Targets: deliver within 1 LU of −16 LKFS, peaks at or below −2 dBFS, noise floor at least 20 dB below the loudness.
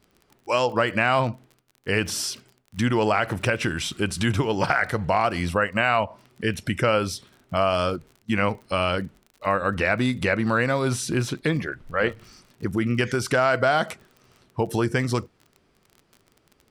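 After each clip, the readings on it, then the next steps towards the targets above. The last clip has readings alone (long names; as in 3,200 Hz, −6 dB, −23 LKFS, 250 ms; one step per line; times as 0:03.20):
crackle rate 38 per second; integrated loudness −24.0 LKFS; sample peak −7.0 dBFS; target loudness −16.0 LKFS
→ click removal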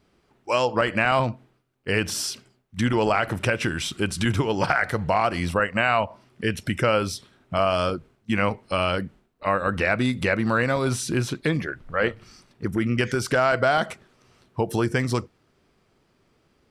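crackle rate 0.060 per second; integrated loudness −24.0 LKFS; sample peak −7.0 dBFS; target loudness −16.0 LKFS
→ level +8 dB
brickwall limiter −2 dBFS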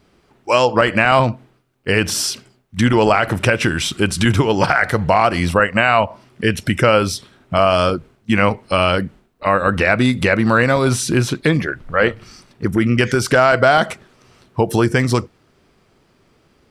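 integrated loudness −16.5 LKFS; sample peak −2.0 dBFS; background noise floor −58 dBFS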